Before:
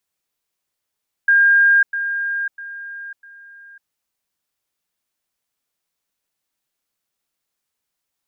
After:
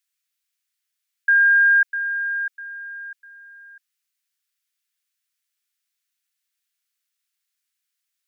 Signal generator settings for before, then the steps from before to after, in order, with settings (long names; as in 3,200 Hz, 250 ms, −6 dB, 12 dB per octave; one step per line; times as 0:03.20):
level staircase 1,610 Hz −9.5 dBFS, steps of −10 dB, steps 4, 0.55 s 0.10 s
high-pass filter 1,500 Hz 24 dB per octave